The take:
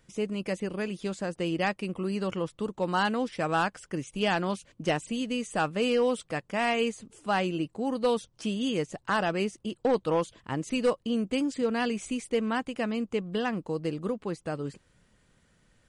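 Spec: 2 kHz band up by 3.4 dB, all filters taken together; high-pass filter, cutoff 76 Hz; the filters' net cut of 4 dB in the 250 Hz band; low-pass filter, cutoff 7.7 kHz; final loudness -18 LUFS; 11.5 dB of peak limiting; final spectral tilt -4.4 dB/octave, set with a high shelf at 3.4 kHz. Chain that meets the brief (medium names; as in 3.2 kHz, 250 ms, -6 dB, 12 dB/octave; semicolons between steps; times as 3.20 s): high-pass 76 Hz; low-pass 7.7 kHz; peaking EQ 250 Hz -5 dB; peaking EQ 2 kHz +3.5 dB; treble shelf 3.4 kHz +3.5 dB; trim +17.5 dB; peak limiter -7 dBFS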